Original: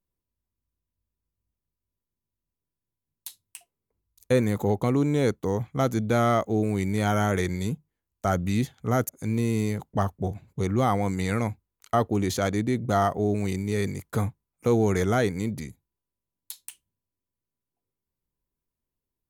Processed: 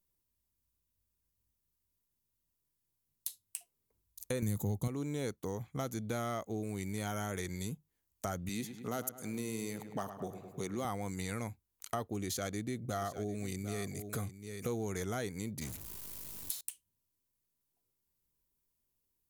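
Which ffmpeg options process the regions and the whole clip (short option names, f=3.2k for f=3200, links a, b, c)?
-filter_complex "[0:a]asettb=1/sr,asplit=3[a][b][c];[a]atrim=end=4.424[d];[b]atrim=start=4.42:end=4.88,asetpts=PTS-STARTPTS,afade=t=in:d=0.004:c=qsin,afade=t=out:st=0.456:d=0.004:c=qsin,highpass=41,bass=f=250:g=14,treble=f=4k:g=10[e];[c]atrim=start=4.876[f];[d][e]acrossfade=d=0.004:c1=hsin:c2=qsin[g];[g][f]acrossfade=d=0.004:c1=qsin:c2=hsin,asettb=1/sr,asplit=3[h][i][j];[h]atrim=end=8.494[k];[i]atrim=start=8.49:end=10.85,asetpts=PTS-STARTPTS,afade=t=in:d=0.004:c=qsin,afade=t=out:st=2.356:d=0.004:c=qsin,highpass=190,asoftclip=type=hard:threshold=-15dB,asplit=2[l][m];[m]adelay=105,lowpass=f=3k:p=1,volume=-11.5dB,asplit=2[n][o];[o]adelay=105,lowpass=f=3k:p=1,volume=0.5,asplit=2[p][q];[q]adelay=105,lowpass=f=3k:p=1,volume=0.5,asplit=2[r][s];[s]adelay=105,lowpass=f=3k:p=1,volume=0.5,asplit=2[t][u];[u]adelay=105,lowpass=f=3k:p=1,volume=0.5[v];[l][n][p][r][t][v]amix=inputs=6:normalize=0,atrim=end_sample=104076[w];[j]atrim=start=10.846[x];[k][w]acrossfade=d=0.004:c1=hsin:c2=qsin[y];[y][x]acrossfade=d=0.004:c1=qsin:c2=hsin,asettb=1/sr,asplit=3[z][aa][ab];[z]atrim=end=12.154[ac];[aa]atrim=start=12.15:end=14.69,asetpts=PTS-STARTPTS,afade=t=in:d=0.004:c=qsin,afade=t=out:st=2.536:d=0.004:c=qsin,asuperstop=centerf=920:order=4:qfactor=4.8,aecho=1:1:750:0.2,atrim=end_sample=112014[ad];[ab]atrim=start=14.686[ae];[ac][ad]acrossfade=d=0.004:c1=hsin:c2=qsin[af];[af][ae]acrossfade=d=0.004:c1=qsin:c2=hsin,asettb=1/sr,asplit=3[ag][ah][ai];[ag]atrim=end=15.614[aj];[ah]atrim=start=15.61:end=16.61,asetpts=PTS-STARTPTS,afade=t=in:d=0.004:c=qsin,afade=t=out:st=0.996:d=0.004:c=qsin,aeval=exprs='val(0)+0.5*0.0178*sgn(val(0))':c=same,agate=range=-33dB:threshold=-38dB:ratio=3:release=100:detection=peak[ak];[ai]atrim=start=16.606[al];[aj][ak]acrossfade=d=0.004:c1=hsin:c2=qsin[am];[am][al]acrossfade=d=0.004:c1=qsin:c2=hsin,highshelf=f=4.3k:g=11.5,acompressor=threshold=-39dB:ratio=2.5,volume=-1.5dB"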